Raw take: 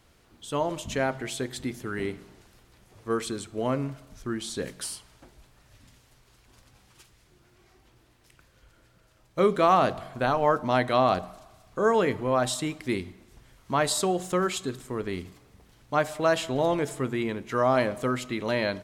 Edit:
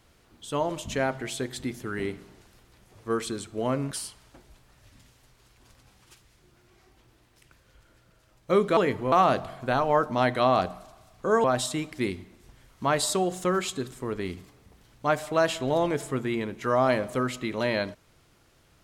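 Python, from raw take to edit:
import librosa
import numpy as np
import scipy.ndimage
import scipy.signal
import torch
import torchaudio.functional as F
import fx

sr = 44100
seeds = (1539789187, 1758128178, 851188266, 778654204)

y = fx.edit(x, sr, fx.cut(start_s=3.91, length_s=0.88),
    fx.move(start_s=11.97, length_s=0.35, to_s=9.65), tone=tone)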